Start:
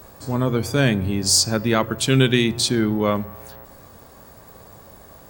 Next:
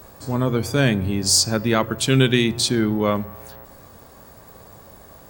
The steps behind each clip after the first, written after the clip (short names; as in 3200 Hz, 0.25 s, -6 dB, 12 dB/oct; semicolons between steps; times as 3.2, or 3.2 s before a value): nothing audible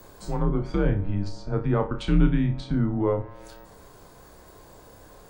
frequency shift -96 Hz; treble ducked by the level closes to 940 Hz, closed at -16.5 dBFS; flutter echo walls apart 5.2 m, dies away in 0.27 s; gain -4 dB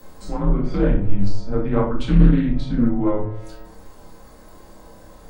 shoebox room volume 280 m³, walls furnished, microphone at 2.1 m; Doppler distortion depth 0.5 ms; gain -1 dB